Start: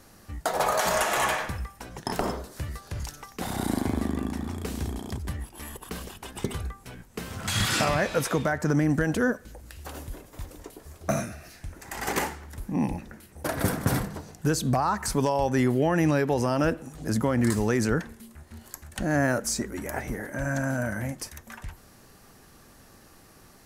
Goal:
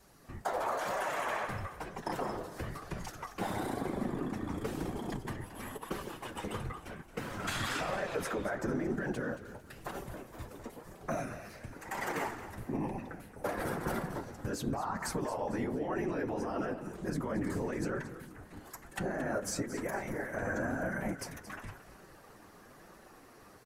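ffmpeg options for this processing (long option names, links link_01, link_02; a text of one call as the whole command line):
ffmpeg -i in.wav -filter_complex "[0:a]acrossover=split=220|2300[link_01][link_02][link_03];[link_02]dynaudnorm=framelen=190:gausssize=3:maxgain=9dB[link_04];[link_01][link_04][link_03]amix=inputs=3:normalize=0,alimiter=limit=-13.5dB:level=0:latency=1:release=16,acompressor=threshold=-24dB:ratio=4,asettb=1/sr,asplit=3[link_05][link_06][link_07];[link_05]atrim=end=8.724[link_08];[link_06]atrim=start=8.72:end=9.72,asetpts=PTS-STARTPTS,afade=type=in:duration=0.004:curve=qsin,afade=type=out:start_time=0.996:duration=0.004:curve=qsin,aeval=exprs='sgn(val(0))*max(abs(val(0))-0.00266,0)':channel_layout=same[link_09];[link_07]atrim=start=9.716[link_10];[link_08][link_09]acrossfade=duration=0.004:curve1=hsin:curve2=qsin[link_11];[link_11][link_10]acrossfade=duration=0.004:curve1=qsin:curve2=hsin,afftfilt=real='hypot(re,im)*cos(2*PI*random(0))':imag='hypot(re,im)*sin(2*PI*random(1))':win_size=512:overlap=0.75,flanger=delay=5.1:depth=5:regen=-30:speed=1:shape=sinusoidal,asplit=5[link_12][link_13][link_14][link_15][link_16];[link_13]adelay=225,afreqshift=-48,volume=-13dB[link_17];[link_14]adelay=450,afreqshift=-96,volume=-21.6dB[link_18];[link_15]adelay=675,afreqshift=-144,volume=-30.3dB[link_19];[link_16]adelay=900,afreqshift=-192,volume=-38.9dB[link_20];[link_12][link_17][link_18][link_19][link_20]amix=inputs=5:normalize=0,volume=1.5dB" out.wav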